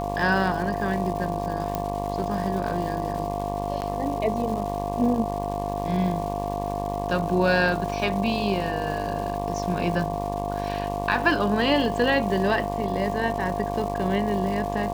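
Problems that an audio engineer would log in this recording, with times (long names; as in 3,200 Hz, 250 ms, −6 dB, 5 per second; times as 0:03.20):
mains buzz 50 Hz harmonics 23 −31 dBFS
surface crackle 560 per second −34 dBFS
whistle 700 Hz −30 dBFS
0:01.75: click −12 dBFS
0:03.81–0:03.82: drop-out 9.6 ms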